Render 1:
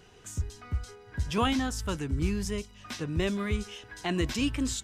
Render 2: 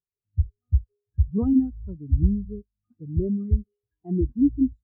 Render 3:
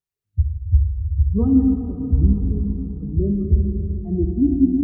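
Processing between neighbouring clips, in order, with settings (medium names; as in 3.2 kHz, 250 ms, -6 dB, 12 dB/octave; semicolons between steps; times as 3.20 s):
tilt shelf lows +9.5 dB, about 1.3 kHz; spectral contrast expander 2.5:1
plate-style reverb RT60 4 s, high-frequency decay 0.9×, DRR 0.5 dB; trim +2.5 dB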